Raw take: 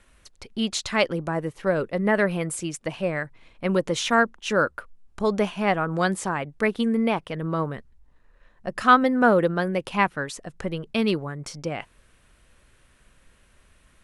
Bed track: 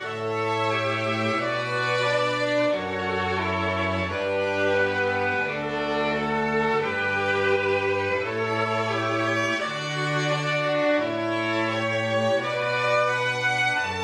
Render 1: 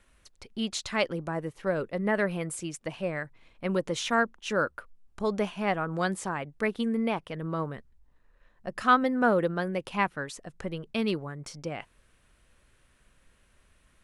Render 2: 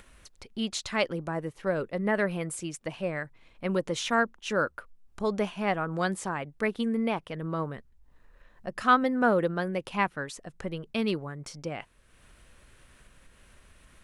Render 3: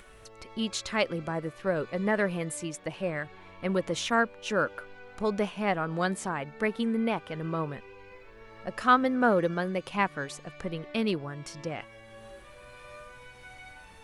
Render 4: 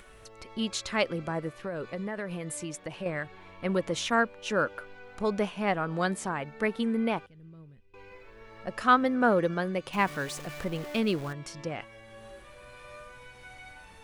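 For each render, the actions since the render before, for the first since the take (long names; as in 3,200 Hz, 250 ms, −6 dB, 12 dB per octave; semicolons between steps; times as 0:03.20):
level −5.5 dB
upward compression, threshold −46 dBFS
mix in bed track −25.5 dB
0:01.61–0:03.06: downward compressor 5 to 1, threshold −31 dBFS; 0:07.26–0:07.94: guitar amp tone stack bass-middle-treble 10-0-1; 0:09.93–0:11.33: converter with a step at zero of −39 dBFS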